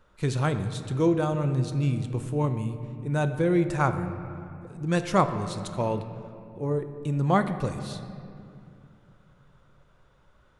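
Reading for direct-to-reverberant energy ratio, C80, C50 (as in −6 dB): 8.0 dB, 11.0 dB, 9.5 dB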